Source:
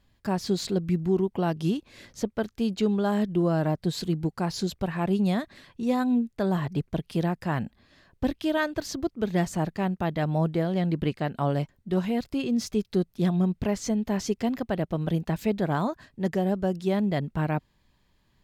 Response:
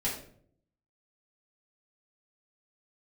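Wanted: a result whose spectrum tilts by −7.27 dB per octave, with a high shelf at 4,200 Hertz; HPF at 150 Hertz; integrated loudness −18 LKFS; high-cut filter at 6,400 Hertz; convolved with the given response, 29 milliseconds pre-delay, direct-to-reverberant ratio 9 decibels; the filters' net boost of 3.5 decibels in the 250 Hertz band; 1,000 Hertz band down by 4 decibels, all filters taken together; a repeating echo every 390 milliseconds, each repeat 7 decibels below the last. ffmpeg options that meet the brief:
-filter_complex "[0:a]highpass=150,lowpass=6400,equalizer=frequency=250:width_type=o:gain=6.5,equalizer=frequency=1000:width_type=o:gain=-6.5,highshelf=frequency=4200:gain=4,aecho=1:1:390|780|1170|1560|1950:0.447|0.201|0.0905|0.0407|0.0183,asplit=2[link_01][link_02];[1:a]atrim=start_sample=2205,adelay=29[link_03];[link_02][link_03]afir=irnorm=-1:irlink=0,volume=-15dB[link_04];[link_01][link_04]amix=inputs=2:normalize=0,volume=5.5dB"

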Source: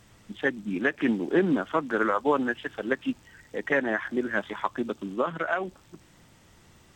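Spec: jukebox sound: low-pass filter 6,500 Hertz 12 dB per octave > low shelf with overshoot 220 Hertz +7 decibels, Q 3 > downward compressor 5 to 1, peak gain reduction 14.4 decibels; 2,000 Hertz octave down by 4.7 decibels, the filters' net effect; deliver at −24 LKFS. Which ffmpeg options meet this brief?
ffmpeg -i in.wav -af "lowpass=6500,lowshelf=frequency=220:width_type=q:width=3:gain=7,equalizer=frequency=2000:width_type=o:gain=-6,acompressor=threshold=-32dB:ratio=5,volume=13dB" out.wav

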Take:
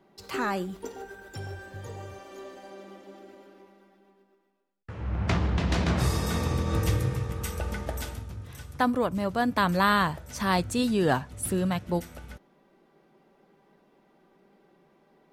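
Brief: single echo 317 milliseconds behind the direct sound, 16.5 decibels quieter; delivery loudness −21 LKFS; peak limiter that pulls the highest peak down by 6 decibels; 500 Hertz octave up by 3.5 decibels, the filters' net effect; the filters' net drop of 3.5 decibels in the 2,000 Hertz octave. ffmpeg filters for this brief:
ffmpeg -i in.wav -af "equalizer=frequency=500:width_type=o:gain=4.5,equalizer=frequency=2000:width_type=o:gain=-5,alimiter=limit=-16.5dB:level=0:latency=1,aecho=1:1:317:0.15,volume=8dB" out.wav

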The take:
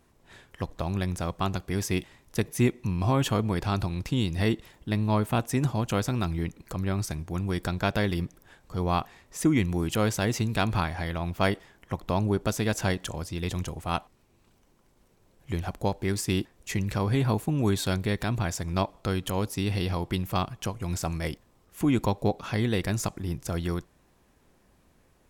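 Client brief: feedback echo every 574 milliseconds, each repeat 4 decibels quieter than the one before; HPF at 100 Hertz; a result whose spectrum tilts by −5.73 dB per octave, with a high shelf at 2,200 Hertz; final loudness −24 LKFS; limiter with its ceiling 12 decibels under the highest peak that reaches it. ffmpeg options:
ffmpeg -i in.wav -af "highpass=100,highshelf=frequency=2200:gain=-3,alimiter=limit=-20.5dB:level=0:latency=1,aecho=1:1:574|1148|1722|2296|2870|3444|4018|4592|5166:0.631|0.398|0.25|0.158|0.0994|0.0626|0.0394|0.0249|0.0157,volume=7.5dB" out.wav

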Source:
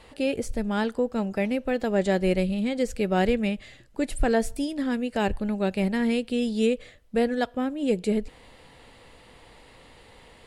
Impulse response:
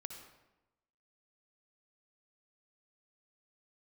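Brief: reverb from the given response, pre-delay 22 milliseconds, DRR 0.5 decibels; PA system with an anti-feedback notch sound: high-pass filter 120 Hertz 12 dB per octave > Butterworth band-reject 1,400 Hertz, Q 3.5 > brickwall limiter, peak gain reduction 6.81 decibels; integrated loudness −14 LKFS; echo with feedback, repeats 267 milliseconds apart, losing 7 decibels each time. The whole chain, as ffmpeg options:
-filter_complex "[0:a]aecho=1:1:267|534|801|1068|1335:0.447|0.201|0.0905|0.0407|0.0183,asplit=2[link_01][link_02];[1:a]atrim=start_sample=2205,adelay=22[link_03];[link_02][link_03]afir=irnorm=-1:irlink=0,volume=3dB[link_04];[link_01][link_04]amix=inputs=2:normalize=0,highpass=120,asuperstop=centerf=1400:order=8:qfactor=3.5,volume=10.5dB,alimiter=limit=-4dB:level=0:latency=1"

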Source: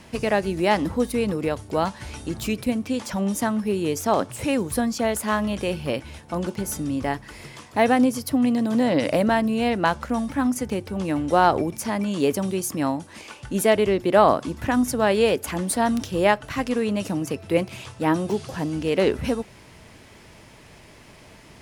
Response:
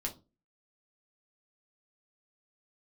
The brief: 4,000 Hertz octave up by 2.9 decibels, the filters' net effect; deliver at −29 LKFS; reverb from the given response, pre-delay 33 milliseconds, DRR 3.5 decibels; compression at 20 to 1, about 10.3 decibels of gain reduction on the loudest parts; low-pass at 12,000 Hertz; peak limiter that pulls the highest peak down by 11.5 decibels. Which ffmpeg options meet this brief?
-filter_complex "[0:a]lowpass=12000,equalizer=frequency=4000:width_type=o:gain=4,acompressor=threshold=-21dB:ratio=20,alimiter=limit=-22.5dB:level=0:latency=1,asplit=2[link_01][link_02];[1:a]atrim=start_sample=2205,adelay=33[link_03];[link_02][link_03]afir=irnorm=-1:irlink=0,volume=-4.5dB[link_04];[link_01][link_04]amix=inputs=2:normalize=0"

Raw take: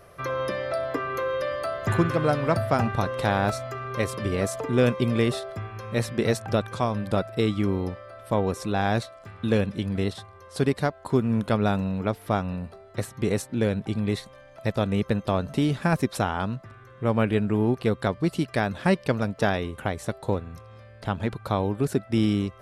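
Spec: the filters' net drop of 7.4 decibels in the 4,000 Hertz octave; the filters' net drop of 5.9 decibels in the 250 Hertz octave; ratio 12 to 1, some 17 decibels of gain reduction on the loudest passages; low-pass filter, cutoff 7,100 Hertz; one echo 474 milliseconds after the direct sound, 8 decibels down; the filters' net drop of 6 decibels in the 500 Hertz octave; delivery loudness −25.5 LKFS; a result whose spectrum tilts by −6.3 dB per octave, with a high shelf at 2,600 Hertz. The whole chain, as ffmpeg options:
ffmpeg -i in.wav -af "lowpass=7100,equalizer=frequency=250:width_type=o:gain=-6.5,equalizer=frequency=500:width_type=o:gain=-5.5,highshelf=frequency=2600:gain=-3.5,equalizer=frequency=4000:width_type=o:gain=-6,acompressor=threshold=-39dB:ratio=12,aecho=1:1:474:0.398,volume=18dB" out.wav

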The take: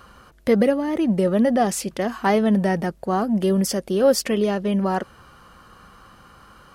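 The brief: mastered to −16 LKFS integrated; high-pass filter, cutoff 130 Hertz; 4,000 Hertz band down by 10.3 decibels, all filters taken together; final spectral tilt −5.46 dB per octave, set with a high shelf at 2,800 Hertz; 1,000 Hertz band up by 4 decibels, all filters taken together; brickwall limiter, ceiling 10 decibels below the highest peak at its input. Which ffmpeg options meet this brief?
ffmpeg -i in.wav -af "highpass=130,equalizer=frequency=1000:width_type=o:gain=7,highshelf=frequency=2800:gain=-8.5,equalizer=frequency=4000:width_type=o:gain=-7,volume=7.5dB,alimiter=limit=-7dB:level=0:latency=1" out.wav

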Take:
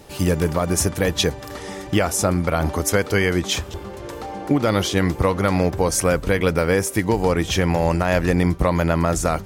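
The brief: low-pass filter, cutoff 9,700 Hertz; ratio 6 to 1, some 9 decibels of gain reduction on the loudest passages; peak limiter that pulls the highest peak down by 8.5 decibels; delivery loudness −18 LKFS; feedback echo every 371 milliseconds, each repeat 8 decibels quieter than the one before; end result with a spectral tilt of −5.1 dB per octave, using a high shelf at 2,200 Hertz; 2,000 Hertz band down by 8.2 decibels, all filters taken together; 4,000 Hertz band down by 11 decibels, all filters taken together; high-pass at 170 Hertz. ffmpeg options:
ffmpeg -i in.wav -af "highpass=170,lowpass=9700,equalizer=frequency=2000:width_type=o:gain=-6.5,highshelf=frequency=2200:gain=-5,equalizer=frequency=4000:width_type=o:gain=-7.5,acompressor=threshold=-25dB:ratio=6,alimiter=limit=-22dB:level=0:latency=1,aecho=1:1:371|742|1113|1484|1855:0.398|0.159|0.0637|0.0255|0.0102,volume=14.5dB" out.wav

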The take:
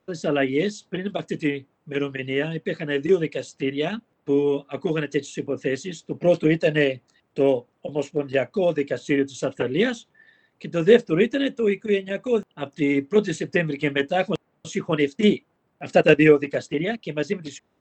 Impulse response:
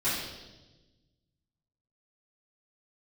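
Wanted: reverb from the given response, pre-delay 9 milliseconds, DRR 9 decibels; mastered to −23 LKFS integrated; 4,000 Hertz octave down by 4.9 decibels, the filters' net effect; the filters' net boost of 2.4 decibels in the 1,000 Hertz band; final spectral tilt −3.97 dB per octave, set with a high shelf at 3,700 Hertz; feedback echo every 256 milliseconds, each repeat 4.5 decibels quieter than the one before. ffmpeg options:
-filter_complex "[0:a]equalizer=frequency=1000:width_type=o:gain=4.5,highshelf=frequency=3700:gain=-4.5,equalizer=frequency=4000:width_type=o:gain=-5,aecho=1:1:256|512|768|1024|1280|1536|1792|2048|2304:0.596|0.357|0.214|0.129|0.0772|0.0463|0.0278|0.0167|0.01,asplit=2[link_01][link_02];[1:a]atrim=start_sample=2205,adelay=9[link_03];[link_02][link_03]afir=irnorm=-1:irlink=0,volume=-19dB[link_04];[link_01][link_04]amix=inputs=2:normalize=0,volume=-2dB"

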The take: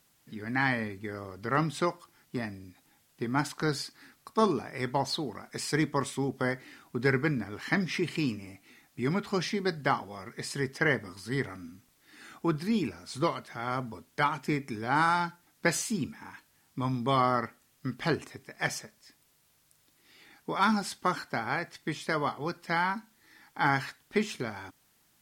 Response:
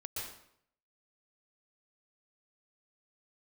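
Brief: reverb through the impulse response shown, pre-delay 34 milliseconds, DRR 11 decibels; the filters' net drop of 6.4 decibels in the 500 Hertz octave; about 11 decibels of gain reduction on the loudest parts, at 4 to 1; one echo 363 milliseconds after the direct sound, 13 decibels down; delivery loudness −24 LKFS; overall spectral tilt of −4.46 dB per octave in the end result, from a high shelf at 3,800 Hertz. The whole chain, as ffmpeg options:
-filter_complex "[0:a]equalizer=frequency=500:width_type=o:gain=-8.5,highshelf=frequency=3800:gain=-9,acompressor=threshold=-37dB:ratio=4,aecho=1:1:363:0.224,asplit=2[link_01][link_02];[1:a]atrim=start_sample=2205,adelay=34[link_03];[link_02][link_03]afir=irnorm=-1:irlink=0,volume=-11dB[link_04];[link_01][link_04]amix=inputs=2:normalize=0,volume=17.5dB"

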